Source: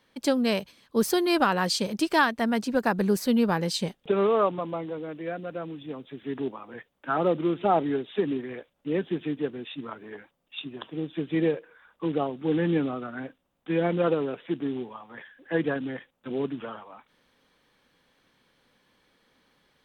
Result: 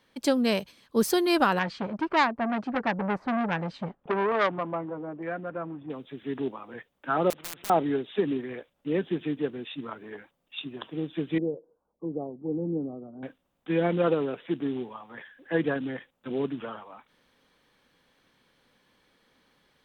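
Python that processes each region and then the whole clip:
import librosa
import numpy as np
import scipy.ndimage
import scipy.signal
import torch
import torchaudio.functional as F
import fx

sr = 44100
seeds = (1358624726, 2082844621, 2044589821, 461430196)

y = fx.chain(x, sr, fx.notch(hz=470.0, q=9.7),
    fx.filter_lfo_lowpass(shape='saw_down', hz=1.1, low_hz=870.0, high_hz=1800.0, q=1.6),
    fx.transformer_sat(knee_hz=1700.0), at=(1.59, 5.9))
y = fx.chain(y, sr, fx.lowpass(hz=2400.0, slope=12),
    fx.overflow_wrap(gain_db=19.5),
    fx.spectral_comp(ratio=4.0), at=(7.3, 7.7))
y = fx.chain(y, sr, fx.gaussian_blur(sigma=14.0),
    fx.low_shelf(hz=290.0, db=-7.0), at=(11.38, 13.23))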